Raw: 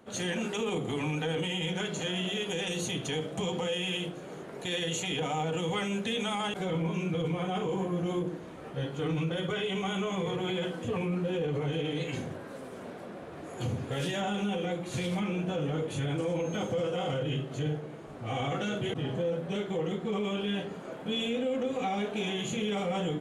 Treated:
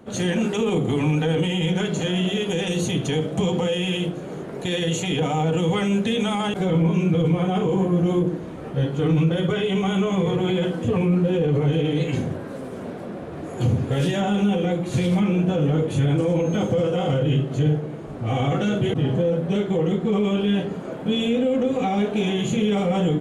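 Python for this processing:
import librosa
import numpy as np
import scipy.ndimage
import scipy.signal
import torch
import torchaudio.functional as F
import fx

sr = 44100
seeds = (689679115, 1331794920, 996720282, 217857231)

y = fx.low_shelf(x, sr, hz=480.0, db=9.0)
y = y * 10.0 ** (4.5 / 20.0)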